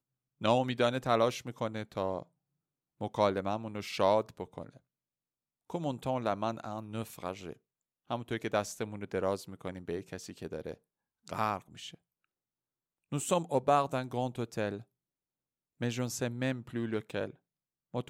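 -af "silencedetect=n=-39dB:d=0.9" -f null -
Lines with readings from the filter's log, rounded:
silence_start: 4.66
silence_end: 5.70 | silence_duration: 1.04
silence_start: 11.94
silence_end: 13.12 | silence_duration: 1.18
silence_start: 14.78
silence_end: 15.81 | silence_duration: 1.03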